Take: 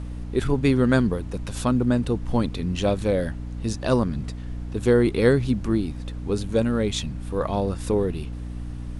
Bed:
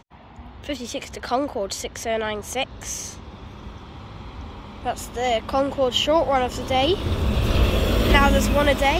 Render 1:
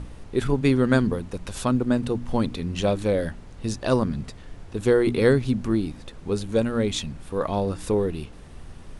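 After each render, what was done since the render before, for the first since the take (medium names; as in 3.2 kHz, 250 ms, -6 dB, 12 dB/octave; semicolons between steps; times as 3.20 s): de-hum 60 Hz, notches 5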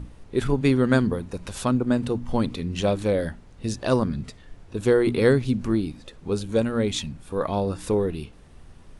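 noise print and reduce 6 dB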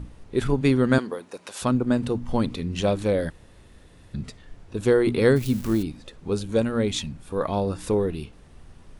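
0.98–1.62 s: high-pass 430 Hz; 3.30–4.14 s: room tone; 5.36–5.83 s: zero-crossing glitches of -26.5 dBFS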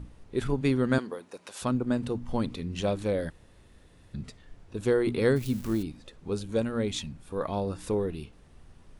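trim -5.5 dB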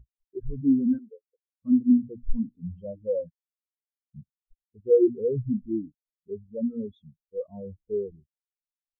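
waveshaping leveller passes 5; spectral contrast expander 4:1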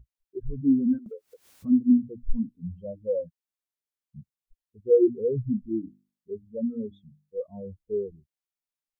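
1.06–1.79 s: upward compressor, threshold -28 dBFS; 5.69–7.40 s: hum notches 50/100/150/200/250/300/350 Hz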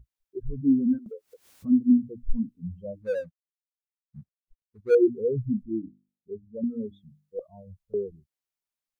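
3.02–4.95 s: median filter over 41 samples; 5.63–6.64 s: Bessel low-pass 510 Hz; 7.39–7.94 s: Chebyshev band-stop 170–620 Hz, order 3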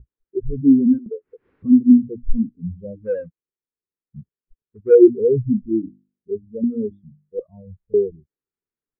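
low-pass 1.9 kHz 24 dB/octave; resonant low shelf 530 Hz +6.5 dB, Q 3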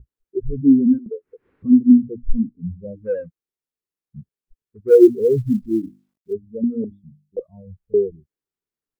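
1.73–2.88 s: low-pass 1.4 kHz; 4.88–6.33 s: companded quantiser 8-bit; 6.84–7.37 s: inverse Chebyshev band-stop 480–1400 Hz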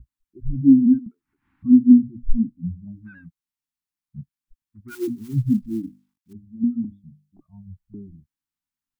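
Chebyshev band-stop 290–830 Hz, order 3; dynamic bell 140 Hz, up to +4 dB, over -39 dBFS, Q 3.9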